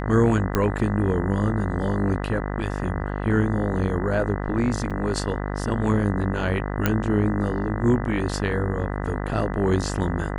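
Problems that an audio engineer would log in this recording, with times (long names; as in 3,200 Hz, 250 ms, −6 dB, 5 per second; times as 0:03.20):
mains buzz 50 Hz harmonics 40 −28 dBFS
0:00.55: click −8 dBFS
0:04.90–0:04.91: drop-out 6.4 ms
0:06.86: click −6 dBFS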